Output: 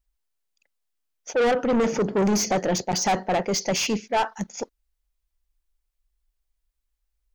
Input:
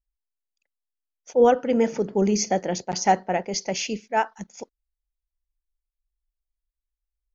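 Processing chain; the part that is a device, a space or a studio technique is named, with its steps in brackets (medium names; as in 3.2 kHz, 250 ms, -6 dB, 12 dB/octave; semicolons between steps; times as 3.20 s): saturation between pre-emphasis and de-emphasis (treble shelf 5.9 kHz +7.5 dB; saturation -26 dBFS, distortion -5 dB; treble shelf 5.9 kHz -7.5 dB); trim +8 dB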